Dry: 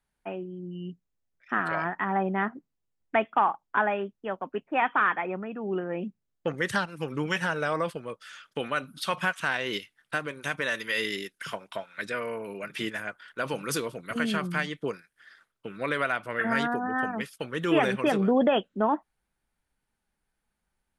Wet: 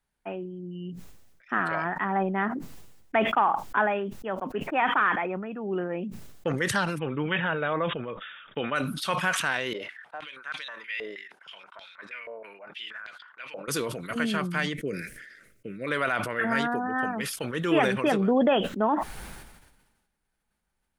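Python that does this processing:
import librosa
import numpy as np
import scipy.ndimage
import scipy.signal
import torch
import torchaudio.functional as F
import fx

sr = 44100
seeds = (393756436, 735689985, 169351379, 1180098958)

y = fx.brickwall_lowpass(x, sr, high_hz=3800.0, at=(6.98, 8.74), fade=0.02)
y = fx.filter_held_bandpass(y, sr, hz=6.3, low_hz=610.0, high_hz=4000.0, at=(9.73, 13.68))
y = fx.curve_eq(y, sr, hz=(310.0, 580.0, 870.0, 2100.0, 3300.0, 6300.0), db=(0, -3, -26, -1, -14, -5), at=(14.73, 15.87))
y = fx.sustainer(y, sr, db_per_s=47.0)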